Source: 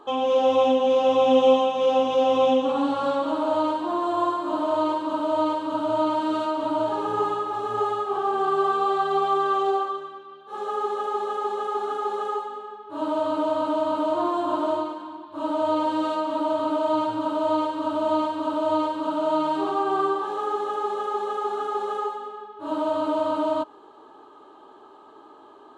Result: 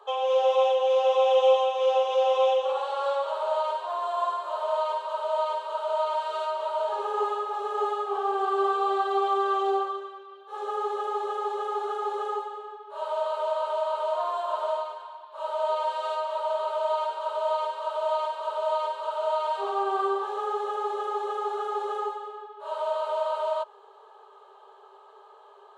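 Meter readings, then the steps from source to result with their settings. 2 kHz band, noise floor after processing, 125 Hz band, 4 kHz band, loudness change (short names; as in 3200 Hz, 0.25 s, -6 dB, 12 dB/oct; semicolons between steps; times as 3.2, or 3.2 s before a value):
-2.5 dB, -52 dBFS, under -35 dB, -2.0 dB, -3.0 dB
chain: Chebyshev high-pass 390 Hz, order 10; gain -2 dB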